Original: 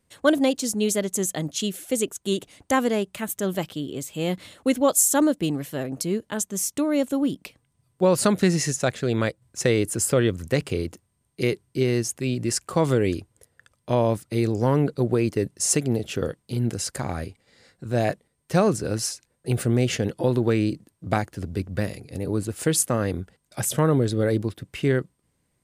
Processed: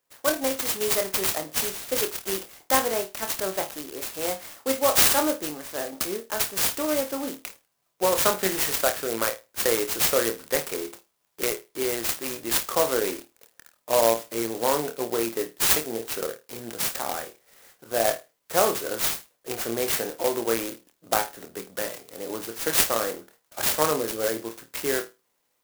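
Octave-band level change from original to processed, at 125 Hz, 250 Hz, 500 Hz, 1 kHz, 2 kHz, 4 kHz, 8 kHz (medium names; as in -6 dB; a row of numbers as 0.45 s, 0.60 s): -19.0 dB, -9.5 dB, -2.0 dB, +2.0 dB, +1.5 dB, +4.0 dB, -0.5 dB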